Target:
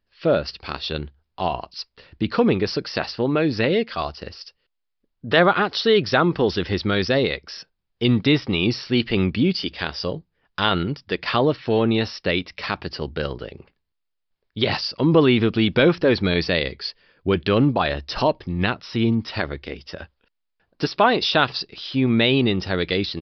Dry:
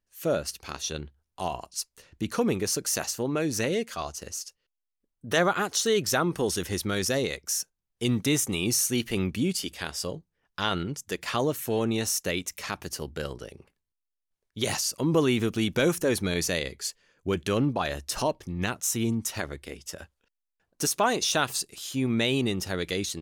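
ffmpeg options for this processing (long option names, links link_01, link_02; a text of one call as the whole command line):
ffmpeg -i in.wav -af "aresample=11025,aresample=44100,volume=7.5dB" out.wav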